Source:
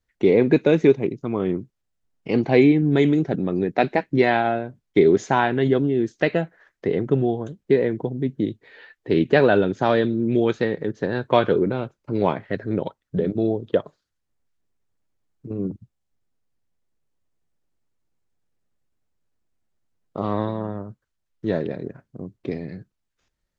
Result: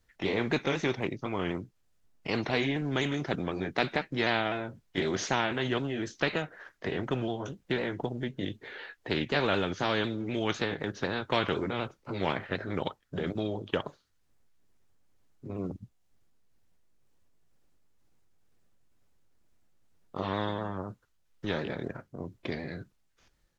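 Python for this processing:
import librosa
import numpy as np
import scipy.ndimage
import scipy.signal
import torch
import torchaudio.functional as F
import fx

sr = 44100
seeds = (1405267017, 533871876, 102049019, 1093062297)

y = fx.pitch_ramps(x, sr, semitones=-1.5, every_ms=251)
y = fx.spectral_comp(y, sr, ratio=2.0)
y = y * 10.0 ** (-8.0 / 20.0)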